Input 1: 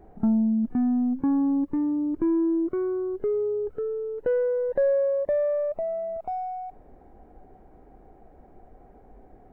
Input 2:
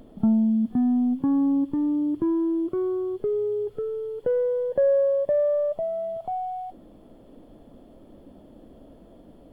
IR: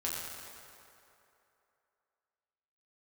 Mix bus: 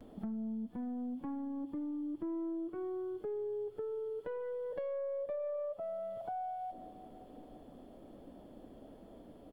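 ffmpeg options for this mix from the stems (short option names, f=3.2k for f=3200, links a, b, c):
-filter_complex "[0:a]aeval=exprs='(tanh(12.6*val(0)+0.65)-tanh(0.65))/12.6':c=same,volume=-8.5dB[a];[1:a]alimiter=limit=-23dB:level=0:latency=1,volume=-1,adelay=7.1,volume=-4.5dB,asplit=2[b][c];[c]volume=-16dB[d];[2:a]atrim=start_sample=2205[e];[d][e]afir=irnorm=-1:irlink=0[f];[a][b][f]amix=inputs=3:normalize=0,lowshelf=f=150:g=-6,acompressor=threshold=-40dB:ratio=3"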